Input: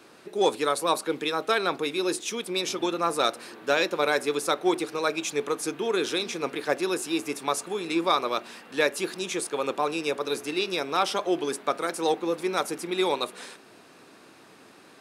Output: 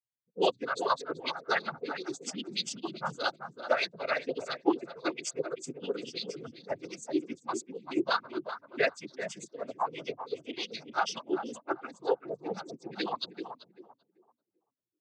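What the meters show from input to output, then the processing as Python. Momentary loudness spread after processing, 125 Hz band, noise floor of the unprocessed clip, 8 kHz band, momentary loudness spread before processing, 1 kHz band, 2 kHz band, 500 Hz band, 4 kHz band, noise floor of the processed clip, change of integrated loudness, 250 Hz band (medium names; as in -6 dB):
10 LU, -6.5 dB, -53 dBFS, -9.5 dB, 6 LU, -6.0 dB, -5.5 dB, -7.5 dB, -7.5 dB, -85 dBFS, -7.0 dB, -6.5 dB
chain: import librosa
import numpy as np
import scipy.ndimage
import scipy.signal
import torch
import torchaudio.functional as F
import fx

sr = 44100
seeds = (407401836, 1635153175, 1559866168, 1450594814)

y = fx.bin_expand(x, sr, power=3.0)
y = fx.echo_tape(y, sr, ms=387, feedback_pct=27, wet_db=-6.0, lp_hz=1100.0, drive_db=18.0, wow_cents=21)
y = fx.noise_vocoder(y, sr, seeds[0], bands=16)
y = F.gain(torch.from_numpy(y), 1.5).numpy()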